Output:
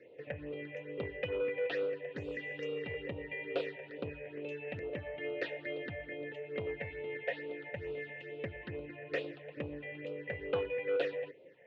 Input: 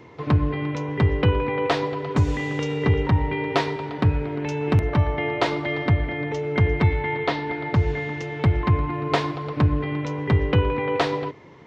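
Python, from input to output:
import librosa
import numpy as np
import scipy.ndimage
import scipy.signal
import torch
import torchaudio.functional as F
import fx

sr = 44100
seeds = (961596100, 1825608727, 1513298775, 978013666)

y = fx.dynamic_eq(x, sr, hz=710.0, q=1.1, threshold_db=-37.0, ratio=4.0, max_db=-4)
y = fx.vowel_filter(y, sr, vowel='e')
y = fx.phaser_stages(y, sr, stages=6, low_hz=310.0, high_hz=1800.0, hz=2.3, feedback_pct=5)
y = fx.transformer_sat(y, sr, knee_hz=770.0)
y = y * 10.0 ** (3.0 / 20.0)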